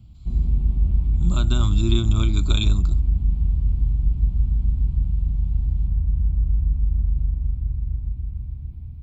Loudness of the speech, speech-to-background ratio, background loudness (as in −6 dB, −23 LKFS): −26.0 LKFS, −2.5 dB, −23.5 LKFS